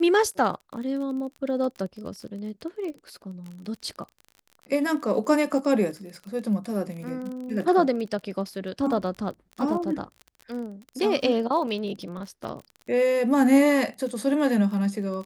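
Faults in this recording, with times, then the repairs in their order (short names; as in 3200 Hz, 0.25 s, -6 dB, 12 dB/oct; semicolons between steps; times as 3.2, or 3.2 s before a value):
crackle 32/s -34 dBFS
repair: de-click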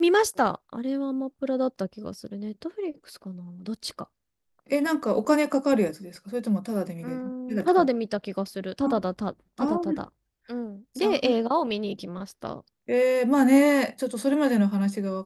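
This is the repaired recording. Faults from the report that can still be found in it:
none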